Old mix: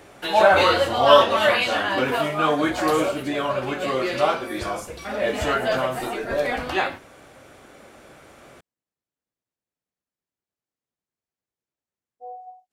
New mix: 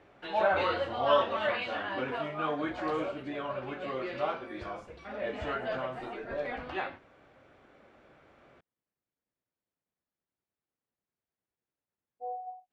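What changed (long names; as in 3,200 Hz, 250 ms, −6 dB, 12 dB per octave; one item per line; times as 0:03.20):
background −11.5 dB
master: add low-pass filter 3,000 Hz 12 dB per octave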